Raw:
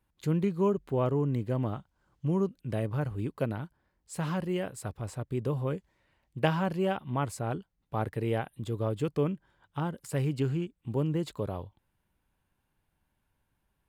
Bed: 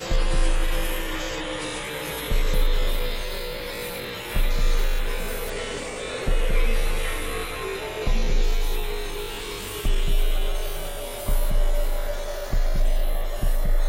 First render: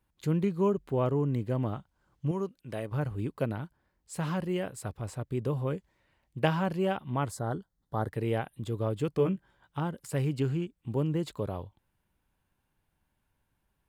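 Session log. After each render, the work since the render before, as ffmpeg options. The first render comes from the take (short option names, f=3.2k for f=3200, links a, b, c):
-filter_complex "[0:a]asettb=1/sr,asplit=3[a][b][c];[a]atrim=end=2.314[d];[b]atrim=start=2.31:end=2.92,asetpts=PTS-STARTPTS,afade=t=in:d=0.004:c=qsin,afade=t=out:st=0.606:d=0.004:c=qsin,lowshelf=f=280:g=-10.5[e];[c]atrim=start=2.916[f];[d][e]acrossfade=d=0.004:c1=hsin:c2=qsin[g];[g][f]acrossfade=d=0.004:c1=qsin:c2=hsin,asettb=1/sr,asplit=3[h][i][j];[h]atrim=end=7.304[k];[i]atrim=start=7.3:end=8.09,asetpts=PTS-STARTPTS,afade=t=in:d=0.004:c=qsin,afade=t=out:st=0.786:d=0.004:c=qsin,asuperstop=centerf=2500:order=4:qfactor=1.8[l];[j]atrim=start=8.086[m];[k][l]acrossfade=d=0.004:c1=hsin:c2=qsin[n];[n][m]acrossfade=d=0.004:c1=qsin:c2=hsin,asettb=1/sr,asplit=3[o][p][q];[o]atrim=end=9.174[r];[p]atrim=start=9.17:end=9.79,asetpts=PTS-STARTPTS,afade=t=in:d=0.004:c=qsin,afade=t=out:st=0.616:d=0.004:c=qsin,asplit=2[s][t];[t]adelay=16,volume=-5dB[u];[s][u]amix=inputs=2:normalize=0,atrim=end_sample=27342[v];[q]atrim=start=9.786[w];[r][v]acrossfade=d=0.004:c1=hsin:c2=qsin[x];[x][w]acrossfade=d=0.004:c1=qsin:c2=hsin"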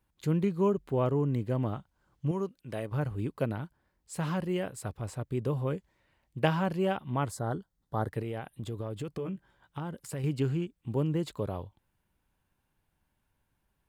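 -filter_complex "[0:a]asettb=1/sr,asplit=3[a][b][c];[a]atrim=end=8.214[d];[b]atrim=start=8.21:end=10.24,asetpts=PTS-STARTPTS,afade=t=in:d=0.004:c=qsin,afade=t=out:st=2.026:d=0.004:c=qsin,acompressor=threshold=-32dB:ratio=6:attack=3.2:release=140:knee=1:detection=peak[e];[c]atrim=start=10.236[f];[d][e]acrossfade=d=0.004:c1=hsin:c2=qsin[g];[g][f]acrossfade=d=0.004:c1=qsin:c2=hsin"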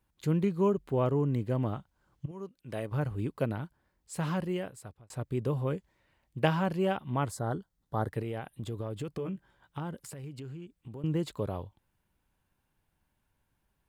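-filter_complex "[0:a]asettb=1/sr,asplit=3[a][b][c];[a]atrim=end=9.964[d];[b]atrim=start=9.96:end=11.04,asetpts=PTS-STARTPTS,afade=t=in:d=0.004:c=qsin,afade=t=out:st=1.076:d=0.004:c=qsin,acompressor=threshold=-41dB:ratio=5:attack=3.2:release=140:knee=1:detection=peak[e];[c]atrim=start=11.036[f];[d][e]acrossfade=d=0.004:c1=hsin:c2=qsin[g];[g][f]acrossfade=d=0.004:c1=qsin:c2=hsin,asplit=3[h][i][j];[h]atrim=end=2.26,asetpts=PTS-STARTPTS,afade=t=out:st=2.256:d=0.004:c=hsin:silence=0.105925[k];[i]atrim=start=2.26:end=5.1,asetpts=PTS-STARTPTS,afade=t=in:d=0.52:silence=0.105925,afade=t=out:st=2.15:d=0.69[l];[j]atrim=start=5.1,asetpts=PTS-STARTPTS,afade=t=in:d=0.004:c=hsin[m];[k][l][m]concat=n=3:v=0:a=1"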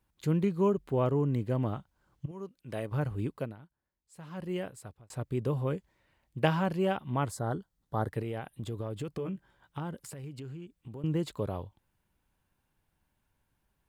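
-filter_complex "[0:a]asplit=3[a][b][c];[a]atrim=end=3.56,asetpts=PTS-STARTPTS,afade=t=out:st=3.27:d=0.29:silence=0.177828[d];[b]atrim=start=3.56:end=4.3,asetpts=PTS-STARTPTS,volume=-15dB[e];[c]atrim=start=4.3,asetpts=PTS-STARTPTS,afade=t=in:d=0.29:silence=0.177828[f];[d][e][f]concat=n=3:v=0:a=1"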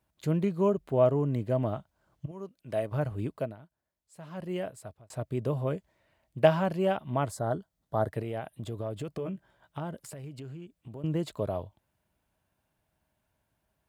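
-af "highpass=52,equalizer=f=640:t=o:w=0.22:g=12"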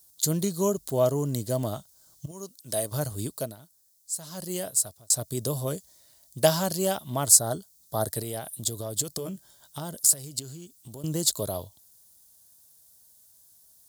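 -af "aexciter=amount=11.7:drive=8.9:freq=4k"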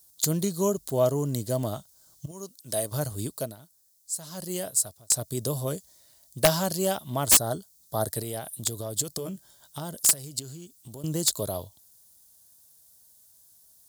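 -af "aeval=exprs='(mod(2.66*val(0)+1,2)-1)/2.66':c=same"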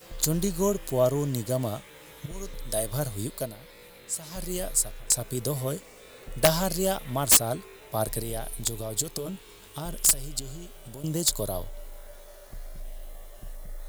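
-filter_complex "[1:a]volume=-18.5dB[a];[0:a][a]amix=inputs=2:normalize=0"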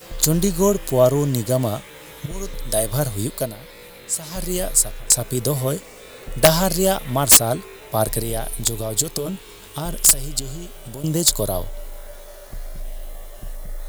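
-af "volume=8dB,alimiter=limit=-1dB:level=0:latency=1"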